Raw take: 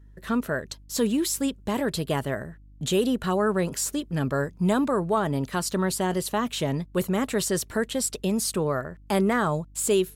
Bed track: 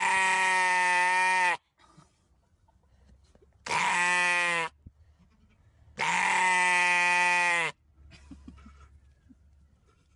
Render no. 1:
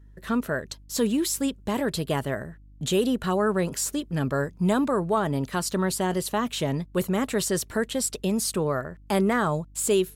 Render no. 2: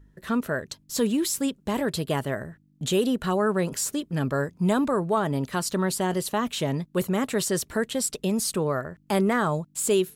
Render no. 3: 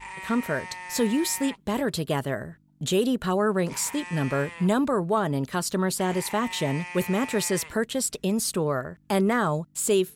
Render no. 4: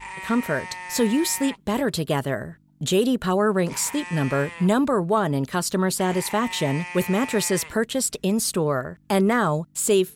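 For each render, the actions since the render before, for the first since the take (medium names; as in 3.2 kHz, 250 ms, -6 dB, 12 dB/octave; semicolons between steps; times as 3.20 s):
no audible change
de-hum 50 Hz, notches 2
add bed track -14 dB
trim +3 dB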